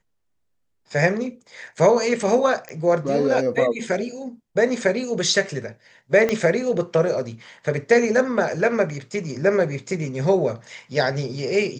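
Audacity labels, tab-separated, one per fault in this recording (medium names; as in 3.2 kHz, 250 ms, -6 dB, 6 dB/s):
2.690000	2.690000	pop -19 dBFS
6.290000	6.290000	pop -9 dBFS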